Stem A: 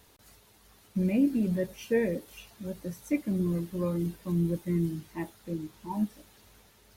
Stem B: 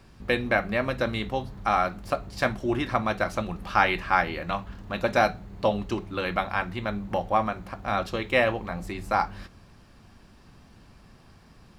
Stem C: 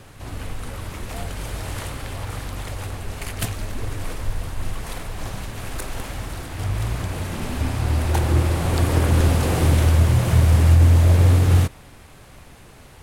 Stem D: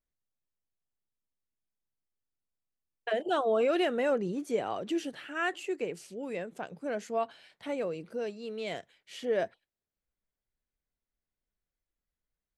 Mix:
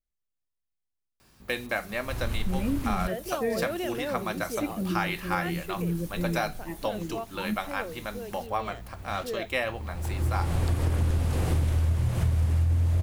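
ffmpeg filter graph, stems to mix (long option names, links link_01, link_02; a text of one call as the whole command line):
ffmpeg -i stem1.wav -i stem2.wav -i stem3.wav -i stem4.wav -filter_complex "[0:a]highshelf=frequency=4100:gain=11.5,acompressor=mode=upward:threshold=-40dB:ratio=2.5,adelay=1500,volume=-4dB[link_01];[1:a]aemphasis=mode=production:type=bsi,adelay=1200,volume=-5.5dB[link_02];[2:a]adelay=1900,volume=-5dB[link_03];[3:a]volume=-5.5dB,asplit=2[link_04][link_05];[link_05]apad=whole_len=658251[link_06];[link_03][link_06]sidechaincompress=threshold=-60dB:ratio=8:attack=16:release=634[link_07];[link_01][link_02][link_07][link_04]amix=inputs=4:normalize=0,lowshelf=frequency=100:gain=10,acompressor=threshold=-22dB:ratio=6" out.wav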